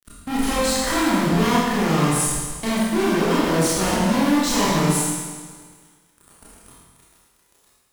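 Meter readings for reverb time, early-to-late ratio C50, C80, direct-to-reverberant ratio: 1.5 s, -3.0 dB, -0.5 dB, -9.0 dB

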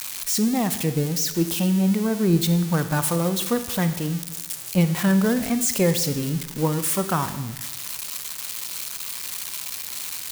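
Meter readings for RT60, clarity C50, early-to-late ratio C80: 1.1 s, 11.5 dB, 13.5 dB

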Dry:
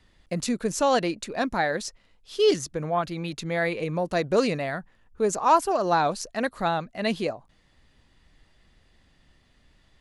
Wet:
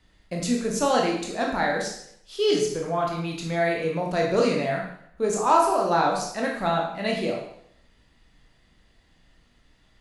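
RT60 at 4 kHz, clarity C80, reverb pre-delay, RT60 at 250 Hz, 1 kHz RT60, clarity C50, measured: 0.65 s, 6.5 dB, 16 ms, 0.75 s, 0.65 s, 4.0 dB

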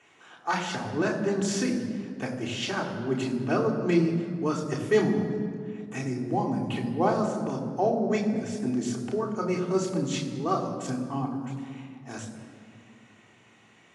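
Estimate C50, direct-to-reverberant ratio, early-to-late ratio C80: 7.0 dB, -2.5 dB, 8.0 dB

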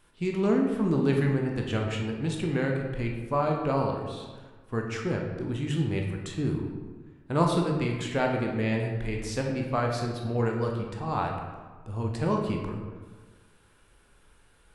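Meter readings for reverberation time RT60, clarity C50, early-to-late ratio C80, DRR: 1.4 s, 4.0 dB, 5.5 dB, 0.5 dB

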